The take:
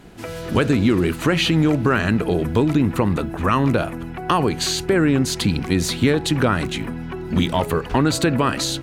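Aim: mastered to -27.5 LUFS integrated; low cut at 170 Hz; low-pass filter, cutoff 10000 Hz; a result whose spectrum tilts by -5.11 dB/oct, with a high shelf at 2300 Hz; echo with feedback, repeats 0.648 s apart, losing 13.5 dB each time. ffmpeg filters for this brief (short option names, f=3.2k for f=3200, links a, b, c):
-af "highpass=170,lowpass=10k,highshelf=f=2.3k:g=-6.5,aecho=1:1:648|1296:0.211|0.0444,volume=-6dB"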